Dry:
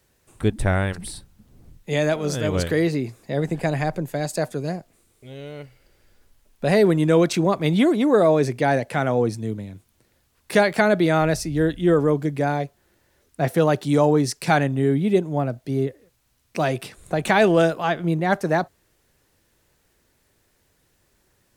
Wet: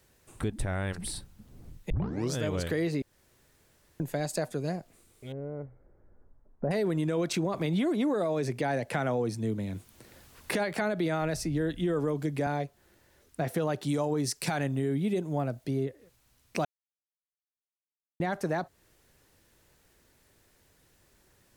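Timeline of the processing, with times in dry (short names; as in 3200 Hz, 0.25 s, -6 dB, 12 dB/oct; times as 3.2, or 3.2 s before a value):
1.9 tape start 0.43 s
3.02–4 room tone
5.32–6.71 Gaussian blur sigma 7.3 samples
7.54–12.47 three-band squash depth 40%
13.88–15.64 high shelf 5100 Hz +6 dB
16.65–18.2 mute
whole clip: limiter -13 dBFS; compressor 2:1, threshold -32 dBFS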